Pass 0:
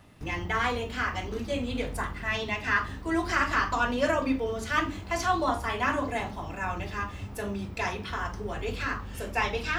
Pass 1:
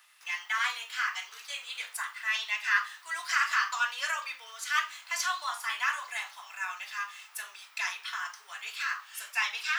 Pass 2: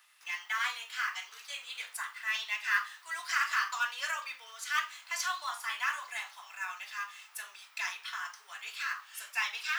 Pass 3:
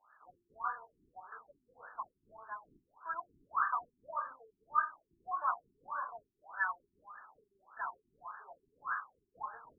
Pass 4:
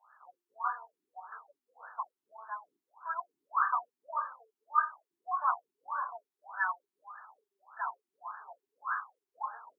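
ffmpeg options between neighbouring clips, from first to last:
ffmpeg -i in.wav -af "highpass=frequency=1200:width=0.5412,highpass=frequency=1200:width=1.3066,highshelf=frequency=4300:gain=6.5" out.wav
ffmpeg -i in.wav -af "acrusher=bits=6:mode=log:mix=0:aa=0.000001,volume=-3dB" out.wav
ffmpeg -i in.wav -filter_complex "[0:a]asplit=2[link_01][link_02];[link_02]acompressor=threshold=-41dB:ratio=6,volume=-1.5dB[link_03];[link_01][link_03]amix=inputs=2:normalize=0,afftfilt=real='re*lt(b*sr/1024,380*pow(1800/380,0.5+0.5*sin(2*PI*1.7*pts/sr)))':imag='im*lt(b*sr/1024,380*pow(1800/380,0.5+0.5*sin(2*PI*1.7*pts/sr)))':win_size=1024:overlap=0.75,volume=2.5dB" out.wav
ffmpeg -i in.wav -af "highpass=frequency=810:width_type=q:width=1.8" out.wav

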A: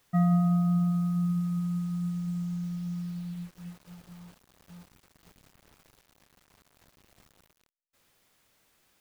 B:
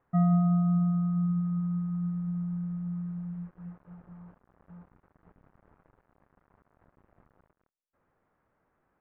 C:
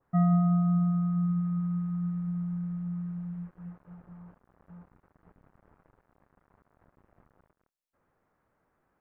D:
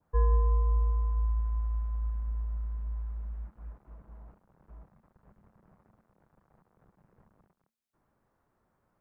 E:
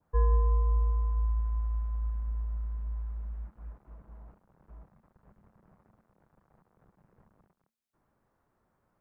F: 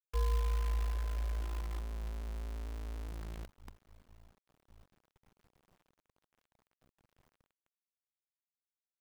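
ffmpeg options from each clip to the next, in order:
ffmpeg -i in.wav -af "lowpass=frequency=1500:width=0.5412,lowpass=frequency=1500:width=1.3066" out.wav
ffmpeg -i in.wav -af "adynamicequalizer=threshold=0.00282:dfrequency=1600:dqfactor=0.7:tfrequency=1600:tqfactor=0.7:attack=5:release=100:ratio=0.375:range=3.5:mode=boostabove:tftype=highshelf" out.wav
ffmpeg -i in.wav -af "afreqshift=-230" out.wav
ffmpeg -i in.wav -af anull out.wav
ffmpeg -i in.wav -af "acrusher=bits=7:dc=4:mix=0:aa=0.000001,volume=-7.5dB" out.wav

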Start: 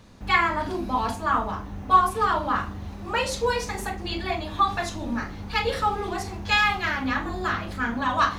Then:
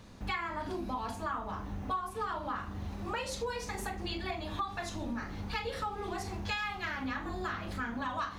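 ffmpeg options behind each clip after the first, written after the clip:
ffmpeg -i in.wav -af "acompressor=threshold=-32dB:ratio=5,volume=-2dB" out.wav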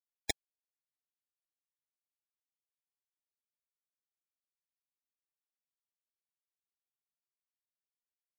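ffmpeg -i in.wav -af "acrusher=bits=3:mix=0:aa=0.000001,afftfilt=real='re*gt(sin(2*PI*3.4*pts/sr)*(1-2*mod(floor(b*sr/1024/820),2)),0)':imag='im*gt(sin(2*PI*3.4*pts/sr)*(1-2*mod(floor(b*sr/1024/820),2)),0)':win_size=1024:overlap=0.75,volume=11dB" out.wav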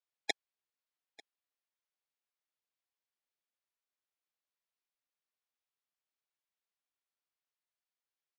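ffmpeg -i in.wav -af "highpass=400,lowpass=4600,aecho=1:1:893:0.0668,volume=3dB" out.wav

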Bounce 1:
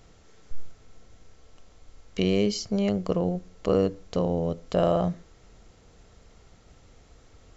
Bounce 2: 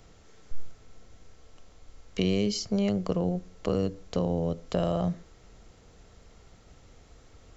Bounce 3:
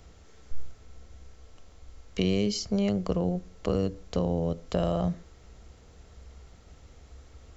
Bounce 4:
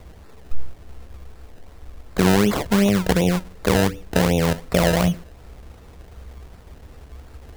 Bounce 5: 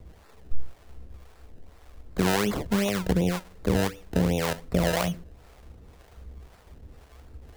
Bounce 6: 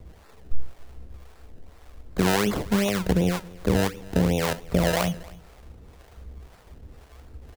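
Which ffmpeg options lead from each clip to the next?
ffmpeg -i in.wav -filter_complex "[0:a]acrossover=split=210|3000[link_01][link_02][link_03];[link_02]acompressor=threshold=-26dB:ratio=6[link_04];[link_01][link_04][link_03]amix=inputs=3:normalize=0" out.wav
ffmpeg -i in.wav -af "equalizer=frequency=66:width_type=o:width=0.27:gain=14.5" out.wav
ffmpeg -i in.wav -af "acrusher=samples=27:mix=1:aa=0.000001:lfo=1:lforange=27:lforate=2.7,volume=9dB" out.wav
ffmpeg -i in.wav -filter_complex "[0:a]acrossover=split=460[link_01][link_02];[link_01]aeval=exprs='val(0)*(1-0.7/2+0.7/2*cos(2*PI*1.9*n/s))':channel_layout=same[link_03];[link_02]aeval=exprs='val(0)*(1-0.7/2-0.7/2*cos(2*PI*1.9*n/s))':channel_layout=same[link_04];[link_03][link_04]amix=inputs=2:normalize=0,volume=-3dB" out.wav
ffmpeg -i in.wav -af "aecho=1:1:272:0.0794,volume=2dB" out.wav

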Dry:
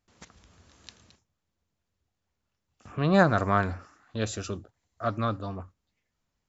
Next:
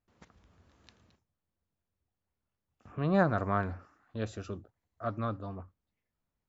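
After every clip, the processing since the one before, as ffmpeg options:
ffmpeg -i in.wav -af "lowpass=frequency=1700:poles=1,volume=-5dB" out.wav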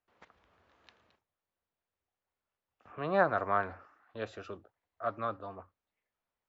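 ffmpeg -i in.wav -filter_complex "[0:a]acrossover=split=400 4000:gain=0.178 1 0.158[link_01][link_02][link_03];[link_01][link_02][link_03]amix=inputs=3:normalize=0,volume=2.5dB" out.wav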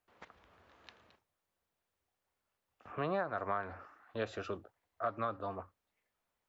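ffmpeg -i in.wav -af "acompressor=threshold=-35dB:ratio=12,volume=4dB" out.wav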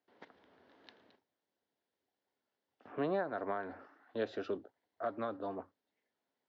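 ffmpeg -i in.wav -af "highpass=170,equalizer=frequency=270:width_type=q:width=4:gain=8,equalizer=frequency=400:width_type=q:width=4:gain=4,equalizer=frequency=1200:width_type=q:width=4:gain=-9,equalizer=frequency=2500:width_type=q:width=4:gain=-7,lowpass=frequency=5000:width=0.5412,lowpass=frequency=5000:width=1.3066" out.wav

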